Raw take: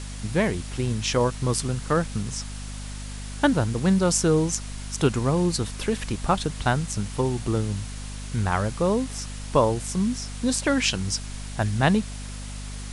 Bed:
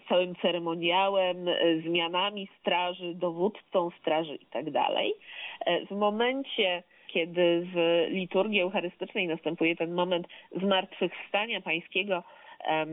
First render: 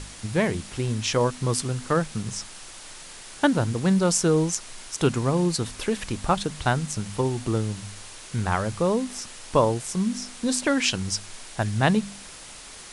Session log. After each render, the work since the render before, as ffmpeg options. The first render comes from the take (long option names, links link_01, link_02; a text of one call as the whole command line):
ffmpeg -i in.wav -af "bandreject=frequency=50:width_type=h:width=4,bandreject=frequency=100:width_type=h:width=4,bandreject=frequency=150:width_type=h:width=4,bandreject=frequency=200:width_type=h:width=4,bandreject=frequency=250:width_type=h:width=4" out.wav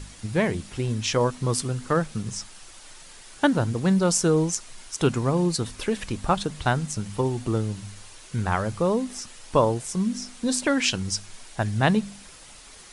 ffmpeg -i in.wav -af "afftdn=noise_reduction=6:noise_floor=-43" out.wav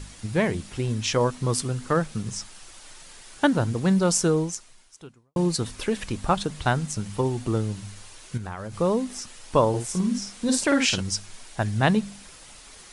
ffmpeg -i in.wav -filter_complex "[0:a]asettb=1/sr,asplit=3[link_01][link_02][link_03];[link_01]atrim=end=8.374[link_04];[link_02]atrim=start=8.37:end=8.77,asetpts=PTS-STARTPTS,afade=type=in:duration=0.004:curve=qsin,afade=type=out:start_time=0.396:duration=0.004:curve=qsin,acompressor=threshold=-30dB:ratio=8:attack=3.2:release=140:knee=1:detection=peak[link_05];[link_03]atrim=start=8.766[link_06];[link_04][link_05]acrossfade=duration=0.004:curve1=hsin:curve2=qsin[link_07];[link_07][link_06]acrossfade=duration=0.004:curve1=qsin:curve2=hsin,asettb=1/sr,asplit=3[link_08][link_09][link_10];[link_08]atrim=end=9.694[link_11];[link_09]atrim=start=9.69:end=11.01,asetpts=PTS-STARTPTS,afade=type=in:duration=0.004:curve=qsin,afade=type=out:start_time=1.316:duration=0.004:curve=qsin,asplit=2[link_12][link_13];[link_13]adelay=50,volume=-4.5dB[link_14];[link_12][link_14]amix=inputs=2:normalize=0,atrim=end_sample=58212[link_15];[link_10]atrim=start=11.006[link_16];[link_11][link_15]acrossfade=duration=0.004:curve1=hsin:curve2=qsin[link_17];[link_17][link_16]acrossfade=duration=0.004:curve1=qsin:curve2=hsin,asplit=2[link_18][link_19];[link_18]atrim=end=5.36,asetpts=PTS-STARTPTS,afade=type=out:start_time=4.24:duration=1.12:curve=qua[link_20];[link_19]atrim=start=5.36,asetpts=PTS-STARTPTS,afade=type=in:duration=0.004:curve=hsin[link_21];[link_20][link_21]concat=n=2:v=0:a=1" out.wav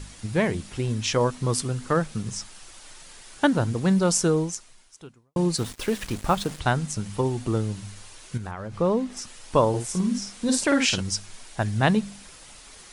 ffmpeg -i in.wav -filter_complex "[0:a]asplit=3[link_01][link_02][link_03];[link_01]afade=type=out:start_time=5.57:duration=0.02[link_04];[link_02]acrusher=bits=5:mix=0:aa=0.5,afade=type=in:start_time=5.57:duration=0.02,afade=type=out:start_time=6.58:duration=0.02[link_05];[link_03]afade=type=in:start_time=6.58:duration=0.02[link_06];[link_04][link_05][link_06]amix=inputs=3:normalize=0,asettb=1/sr,asplit=3[link_07][link_08][link_09];[link_07]atrim=end=8.514[link_10];[link_08]atrim=start=8.51:end=9.17,asetpts=PTS-STARTPTS,afade=type=in:duration=0.004:curve=qsin,afade=type=out:start_time=0.656:duration=0.004:curve=qsin,aemphasis=mode=reproduction:type=50fm[link_11];[link_09]atrim=start=9.166[link_12];[link_10][link_11]acrossfade=duration=0.004:curve1=hsin:curve2=qsin[link_13];[link_13][link_12]acrossfade=duration=0.004:curve1=qsin:curve2=hsin" out.wav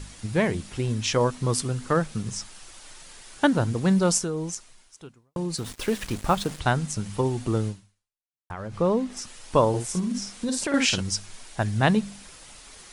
ffmpeg -i in.wav -filter_complex "[0:a]asettb=1/sr,asplit=3[link_01][link_02][link_03];[link_01]atrim=end=4.184[link_04];[link_02]atrim=start=4.18:end=5.79,asetpts=PTS-STARTPTS,afade=type=in:duration=0.004:curve=qsin,afade=type=out:start_time=1.606:duration=0.004:curve=qsin,acompressor=threshold=-27dB:ratio=3:attack=3.2:release=140:knee=1:detection=peak[link_05];[link_03]atrim=start=5.786[link_06];[link_04][link_05]acrossfade=duration=0.004:curve1=hsin:curve2=qsin[link_07];[link_07][link_06]acrossfade=duration=0.004:curve1=qsin:curve2=hsin,asettb=1/sr,asplit=3[link_08][link_09][link_10];[link_08]atrim=end=9.994[link_11];[link_09]atrim=start=9.99:end=10.74,asetpts=PTS-STARTPTS,afade=type=in:duration=0.004:curve=qsin,afade=type=out:start_time=0.746:duration=0.004:curve=qsin,acompressor=threshold=-23dB:ratio=6:attack=3.2:release=140:knee=1:detection=peak[link_12];[link_10]atrim=start=10.736[link_13];[link_11][link_12]acrossfade=duration=0.004:curve1=hsin:curve2=qsin[link_14];[link_14][link_13]acrossfade=duration=0.004:curve1=qsin:curve2=hsin,asplit=2[link_15][link_16];[link_15]atrim=end=8.5,asetpts=PTS-STARTPTS,afade=type=out:start_time=7.68:duration=0.82:curve=exp[link_17];[link_16]atrim=start=8.5,asetpts=PTS-STARTPTS,afade=type=in:duration=0.004:curve=hsin[link_18];[link_17][link_18]concat=n=2:v=0:a=1" out.wav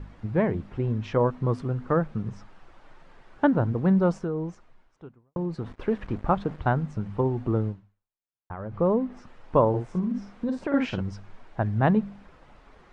ffmpeg -i in.wav -af "lowpass=1300" out.wav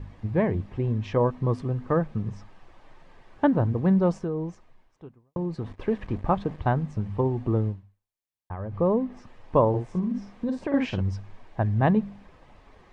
ffmpeg -i in.wav -af "equalizer=frequency=95:width=6.1:gain=7.5,bandreject=frequency=1400:width=6.6" out.wav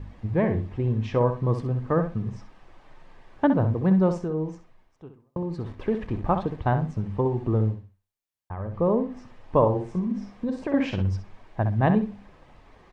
ffmpeg -i in.wav -filter_complex "[0:a]asplit=2[link_01][link_02];[link_02]adelay=64,lowpass=frequency=4900:poles=1,volume=-8.5dB,asplit=2[link_03][link_04];[link_04]adelay=64,lowpass=frequency=4900:poles=1,volume=0.21,asplit=2[link_05][link_06];[link_06]adelay=64,lowpass=frequency=4900:poles=1,volume=0.21[link_07];[link_01][link_03][link_05][link_07]amix=inputs=4:normalize=0" out.wav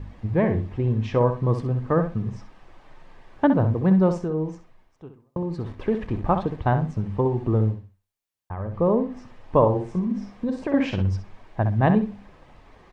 ffmpeg -i in.wav -af "volume=2dB" out.wav